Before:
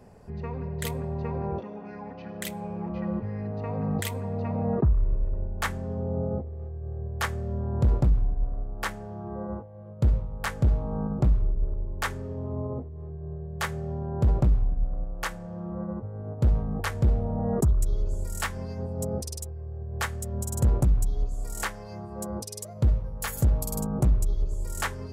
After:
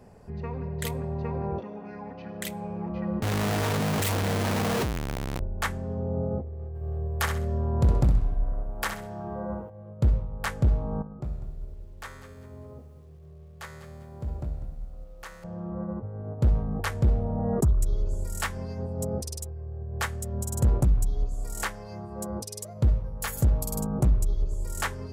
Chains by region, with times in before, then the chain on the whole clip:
3.22–5.4 infinite clipping + HPF 56 Hz
6.75–9.7 high shelf 8200 Hz +4.5 dB + feedback echo 64 ms, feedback 27%, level -7 dB + mismatched tape noise reduction encoder only
11.02–15.44 resonator 74 Hz, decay 1.4 s, mix 80% + lo-fi delay 0.197 s, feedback 35%, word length 10-bit, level -12 dB
whole clip: dry

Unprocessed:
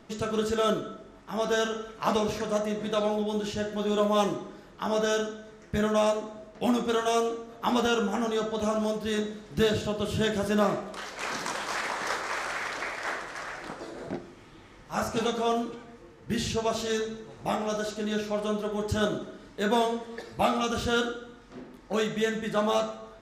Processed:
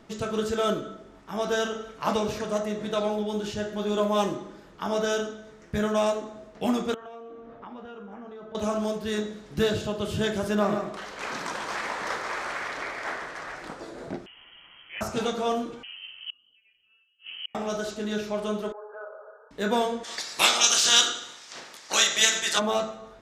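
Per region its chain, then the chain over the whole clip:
6.94–8.55 LPF 2000 Hz + compressor, threshold -40 dBFS
10.55–13.56 high shelf 4800 Hz -6 dB + echo 0.142 s -7.5 dB
14.26–15.01 compressor 1.5:1, threshold -48 dBFS + inverted band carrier 3200 Hz
15.83–17.55 tilt -3 dB/oct + flipped gate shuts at -24 dBFS, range -40 dB + inverted band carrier 3100 Hz
18.72–19.51 brick-wall FIR band-pass 410–1700 Hz + compressor 2.5:1, threshold -41 dBFS
20.03–22.58 spectral limiter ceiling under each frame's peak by 18 dB + HPF 530 Hz 6 dB/oct + bell 6200 Hz +14.5 dB 2.1 oct
whole clip: dry

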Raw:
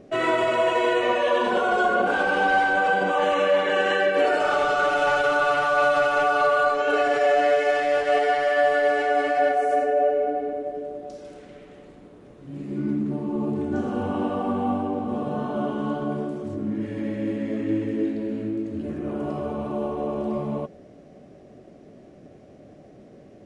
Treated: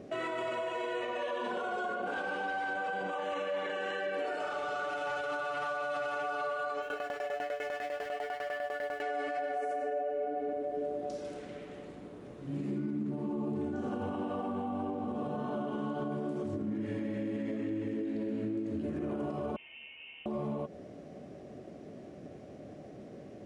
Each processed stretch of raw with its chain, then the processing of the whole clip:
6.81–9.01 low shelf 210 Hz -11 dB + added noise pink -49 dBFS + tremolo saw down 10 Hz, depth 95%
19.56–20.26 differentiator + inverted band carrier 3300 Hz
whole clip: HPF 58 Hz; compressor, threshold -30 dBFS; limiter -27.5 dBFS

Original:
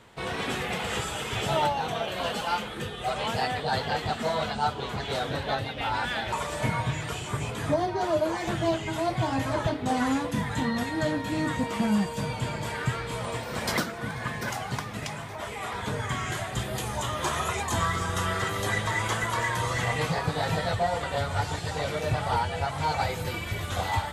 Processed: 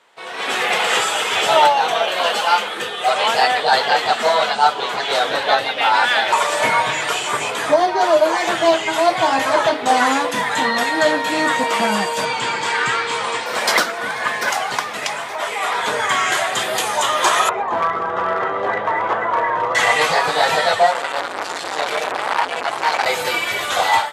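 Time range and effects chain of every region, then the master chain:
12.25–13.46 LPF 8500 Hz 24 dB/oct + bell 620 Hz -14.5 dB 0.23 oct
17.49–19.75 LPF 1000 Hz + hard clip -23.5 dBFS
20.91–23.06 hard clip -22.5 dBFS + core saturation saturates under 810 Hz
whole clip: HPF 550 Hz 12 dB/oct; high shelf 12000 Hz -8.5 dB; AGC gain up to 16 dB

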